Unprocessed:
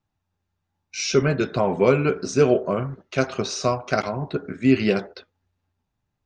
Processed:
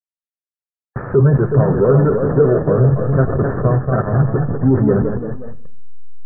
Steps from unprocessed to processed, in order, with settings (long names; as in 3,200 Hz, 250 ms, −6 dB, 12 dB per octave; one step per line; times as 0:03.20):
hold until the input has moved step −24.5 dBFS
power curve on the samples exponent 0.5
gate on every frequency bin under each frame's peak −25 dB strong
convolution reverb RT60 0.75 s, pre-delay 4 ms, DRR 13 dB
delay with pitch and tempo change per echo 436 ms, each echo +1 semitone, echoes 3, each echo −6 dB
Chebyshev low-pass with heavy ripple 1,800 Hz, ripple 6 dB
parametric band 120 Hz +13 dB 1 octave
level −1 dB